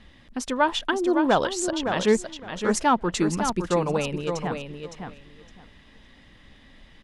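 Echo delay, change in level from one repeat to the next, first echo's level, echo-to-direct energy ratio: 562 ms, −15.5 dB, −7.0 dB, −7.0 dB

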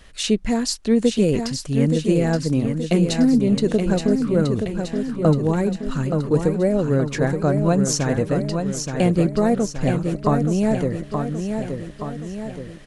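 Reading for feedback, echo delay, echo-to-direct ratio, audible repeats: 54%, 874 ms, −4.5 dB, 6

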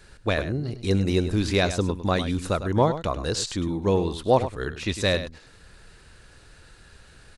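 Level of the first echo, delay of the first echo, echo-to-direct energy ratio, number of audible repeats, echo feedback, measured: −11.5 dB, 102 ms, −11.5 dB, 1, repeats not evenly spaced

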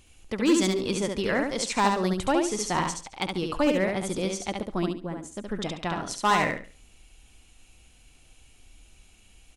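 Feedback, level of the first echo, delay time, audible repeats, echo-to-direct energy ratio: 26%, −4.0 dB, 70 ms, 3, −3.5 dB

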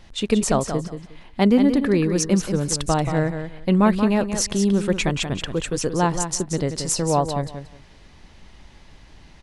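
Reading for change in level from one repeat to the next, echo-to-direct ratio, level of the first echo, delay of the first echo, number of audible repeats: −14.5 dB, −8.5 dB, −8.5 dB, 180 ms, 2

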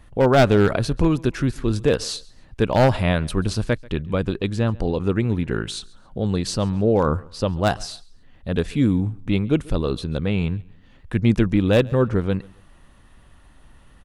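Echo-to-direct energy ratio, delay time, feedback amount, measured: −23.5 dB, 137 ms, 31%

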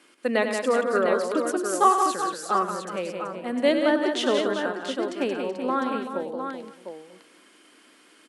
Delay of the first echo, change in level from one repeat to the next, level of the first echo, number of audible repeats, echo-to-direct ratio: 99 ms, repeats not evenly spaced, −8.5 dB, 8, −1.5 dB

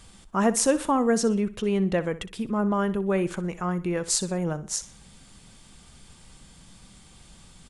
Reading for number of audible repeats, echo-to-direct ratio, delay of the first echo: 3, −15.5 dB, 62 ms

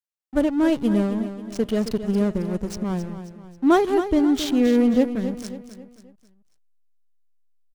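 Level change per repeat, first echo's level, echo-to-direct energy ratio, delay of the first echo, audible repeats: −7.5 dB, −11.0 dB, −10.0 dB, 269 ms, 4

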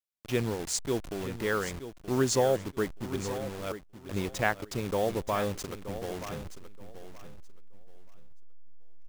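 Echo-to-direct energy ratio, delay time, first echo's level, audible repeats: −12.0 dB, 926 ms, −12.0 dB, 2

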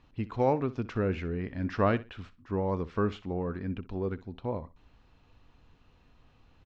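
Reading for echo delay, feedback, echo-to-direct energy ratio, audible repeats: 62 ms, 24%, −17.5 dB, 2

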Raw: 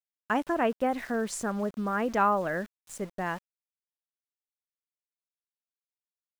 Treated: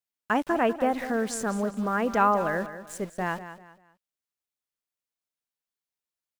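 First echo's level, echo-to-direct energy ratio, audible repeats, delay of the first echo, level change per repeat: −12.5 dB, −12.0 dB, 3, 196 ms, −10.0 dB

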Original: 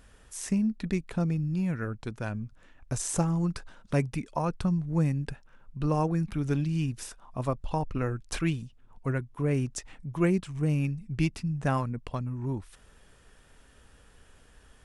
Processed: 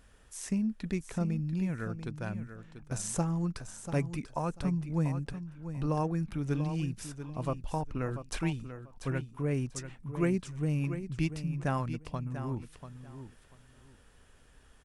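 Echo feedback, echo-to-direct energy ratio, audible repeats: 19%, −10.5 dB, 2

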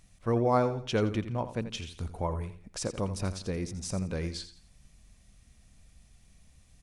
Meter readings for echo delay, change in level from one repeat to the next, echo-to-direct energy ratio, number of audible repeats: 85 ms, −10.0 dB, −11.5 dB, 3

